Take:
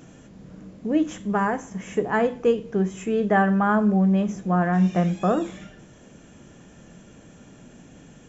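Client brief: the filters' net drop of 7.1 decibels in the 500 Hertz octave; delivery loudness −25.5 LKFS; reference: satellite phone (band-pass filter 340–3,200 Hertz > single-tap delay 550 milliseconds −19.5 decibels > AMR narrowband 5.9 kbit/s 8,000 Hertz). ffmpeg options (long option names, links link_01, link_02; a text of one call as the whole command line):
ffmpeg -i in.wav -af "highpass=340,lowpass=3200,equalizer=frequency=500:width_type=o:gain=-7.5,aecho=1:1:550:0.106,volume=4.5dB" -ar 8000 -c:a libopencore_amrnb -b:a 5900 out.amr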